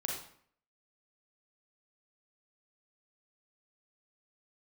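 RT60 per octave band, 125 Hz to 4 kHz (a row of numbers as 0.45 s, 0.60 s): 0.60 s, 0.65 s, 0.55 s, 0.60 s, 0.55 s, 0.45 s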